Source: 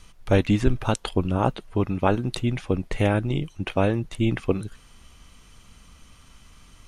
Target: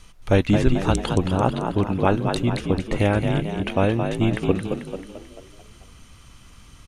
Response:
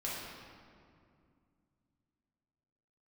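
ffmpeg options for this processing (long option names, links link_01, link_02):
-filter_complex "[0:a]asplit=7[link_01][link_02][link_03][link_04][link_05][link_06][link_07];[link_02]adelay=220,afreqshift=48,volume=-6.5dB[link_08];[link_03]adelay=440,afreqshift=96,volume=-12.7dB[link_09];[link_04]adelay=660,afreqshift=144,volume=-18.9dB[link_10];[link_05]adelay=880,afreqshift=192,volume=-25.1dB[link_11];[link_06]adelay=1100,afreqshift=240,volume=-31.3dB[link_12];[link_07]adelay=1320,afreqshift=288,volume=-37.5dB[link_13];[link_01][link_08][link_09][link_10][link_11][link_12][link_13]amix=inputs=7:normalize=0,volume=1.5dB"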